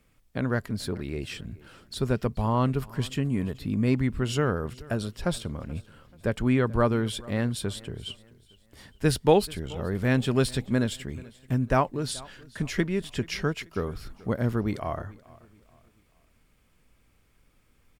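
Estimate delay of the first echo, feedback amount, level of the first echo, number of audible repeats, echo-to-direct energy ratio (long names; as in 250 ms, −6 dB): 432 ms, 37%, −22.0 dB, 2, −21.5 dB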